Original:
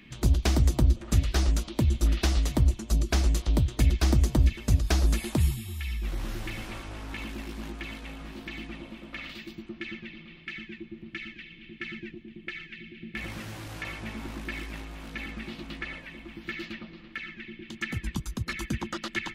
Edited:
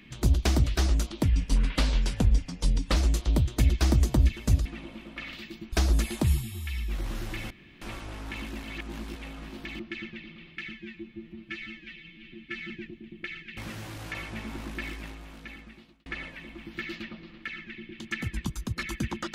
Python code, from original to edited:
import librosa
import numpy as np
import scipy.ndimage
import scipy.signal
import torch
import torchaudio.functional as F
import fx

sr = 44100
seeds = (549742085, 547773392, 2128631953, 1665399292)

y = fx.edit(x, sr, fx.cut(start_s=0.64, length_s=0.57),
    fx.speed_span(start_s=1.8, length_s=1.37, speed=0.79),
    fx.insert_room_tone(at_s=6.64, length_s=0.31),
    fx.reverse_span(start_s=7.46, length_s=0.52),
    fx.move(start_s=8.62, length_s=1.07, to_s=4.86),
    fx.stretch_span(start_s=10.63, length_s=1.31, factor=1.5),
    fx.cut(start_s=12.81, length_s=0.46),
    fx.fade_out_span(start_s=14.54, length_s=1.22), tone=tone)